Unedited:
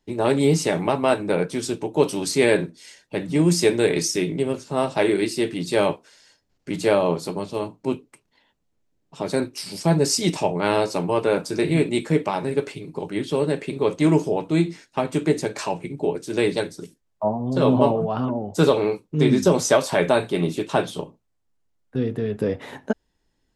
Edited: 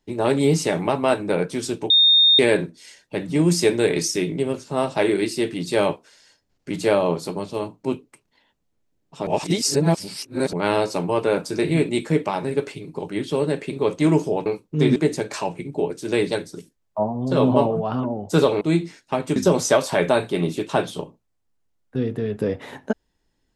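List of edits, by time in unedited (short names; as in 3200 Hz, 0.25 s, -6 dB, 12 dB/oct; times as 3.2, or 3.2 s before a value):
1.9–2.39 bleep 3670 Hz -11 dBFS
9.27–10.53 reverse
14.46–15.21 swap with 18.86–19.36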